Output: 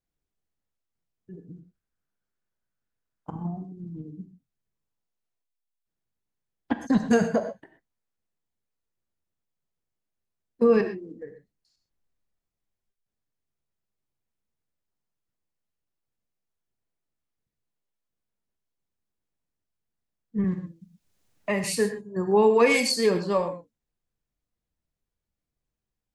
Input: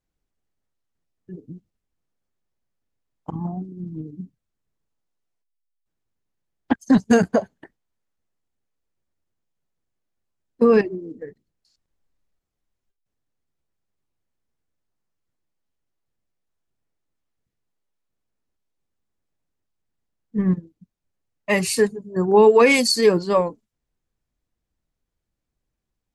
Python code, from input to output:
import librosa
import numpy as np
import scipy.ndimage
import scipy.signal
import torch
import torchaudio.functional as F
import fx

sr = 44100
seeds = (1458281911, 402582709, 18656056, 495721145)

y = fx.peak_eq(x, sr, hz=1500.0, db=9.5, octaves=0.45, at=(1.37, 3.37))
y = fx.rev_gated(y, sr, seeds[0], gate_ms=150, shape='flat', drr_db=6.5)
y = fx.band_squash(y, sr, depth_pct=70, at=(20.44, 21.64))
y = y * librosa.db_to_amplitude(-6.0)